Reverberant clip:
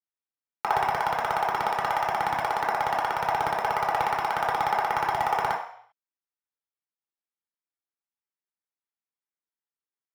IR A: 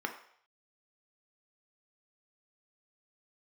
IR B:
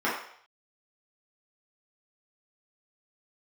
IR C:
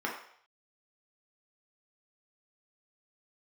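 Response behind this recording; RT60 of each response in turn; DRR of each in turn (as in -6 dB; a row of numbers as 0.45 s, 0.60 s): C; 0.60 s, 0.60 s, 0.60 s; 4.0 dB, -9.0 dB, -3.0 dB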